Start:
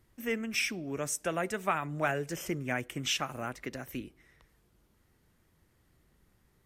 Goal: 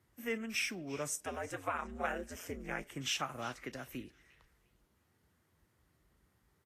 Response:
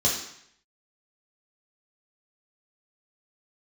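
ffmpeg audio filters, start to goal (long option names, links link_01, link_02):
-filter_complex "[0:a]asettb=1/sr,asplit=3[link_01][link_02][link_03];[link_01]atrim=end=1.244[link_04];[link_02]atrim=start=1.24:end=2.91,asetpts=PTS-STARTPTS,afade=type=in:duration=0.004:curve=qsin,afade=type=out:start_time=1.666:duration=0.004:curve=qsin,aeval=exprs='val(0)*sin(2*PI*88*n/s)':channel_layout=same[link_05];[link_03]atrim=start=2.906[link_06];[link_04][link_05]acrossfade=duration=0.004:curve1=hsin:curve2=qsin[link_07];[link_07][link_06]acrossfade=duration=0.004:curve1=qsin:curve2=hsin,acrossover=split=160|1500|7300[link_08][link_09][link_10][link_11];[link_09]crystalizer=i=8.5:c=0[link_12];[link_10]aecho=1:1:353|706|1059:0.188|0.0452|0.0108[link_13];[link_08][link_12][link_13][link_11]amix=inputs=4:normalize=0,volume=-5.5dB" -ar 44100 -c:a libvorbis -b:a 32k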